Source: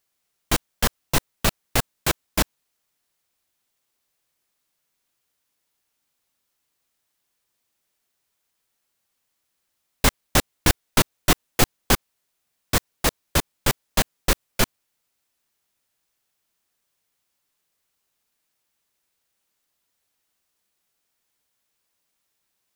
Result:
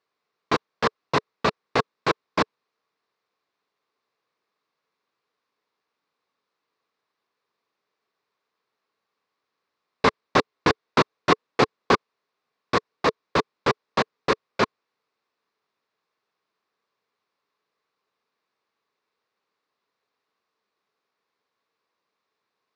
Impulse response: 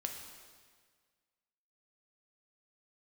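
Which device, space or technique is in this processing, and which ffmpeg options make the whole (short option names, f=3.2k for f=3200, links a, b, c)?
kitchen radio: -af "highpass=160,equalizer=f=440:t=q:w=4:g=9,equalizer=f=1.1k:t=q:w=4:g=9,equalizer=f=3.1k:t=q:w=4:g=-7,lowpass=f=4.4k:w=0.5412,lowpass=f=4.4k:w=1.3066"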